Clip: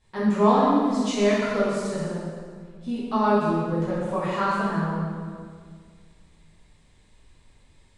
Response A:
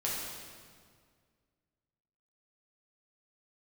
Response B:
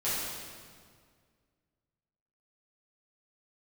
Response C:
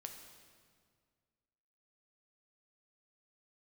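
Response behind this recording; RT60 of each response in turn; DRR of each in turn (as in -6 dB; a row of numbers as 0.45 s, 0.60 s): B; 1.9 s, 1.9 s, 1.9 s; -6.0 dB, -12.0 dB, 3.5 dB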